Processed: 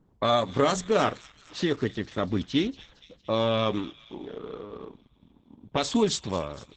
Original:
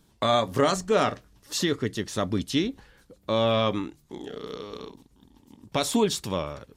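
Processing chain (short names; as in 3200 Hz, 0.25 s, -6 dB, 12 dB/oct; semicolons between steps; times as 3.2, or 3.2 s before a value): low-pass opened by the level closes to 890 Hz, open at -19 dBFS; thin delay 0.232 s, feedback 60%, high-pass 2500 Hz, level -14 dB; Opus 10 kbps 48000 Hz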